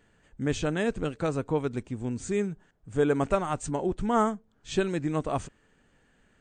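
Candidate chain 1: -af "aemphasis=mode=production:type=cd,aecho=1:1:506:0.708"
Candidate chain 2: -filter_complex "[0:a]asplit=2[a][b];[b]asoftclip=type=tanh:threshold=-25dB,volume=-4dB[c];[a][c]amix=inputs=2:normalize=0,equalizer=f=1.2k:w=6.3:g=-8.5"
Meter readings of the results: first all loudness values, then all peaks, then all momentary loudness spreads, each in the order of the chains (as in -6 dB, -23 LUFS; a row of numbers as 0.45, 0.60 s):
-28.0, -26.5 LUFS; -11.0, -11.0 dBFS; 8, 7 LU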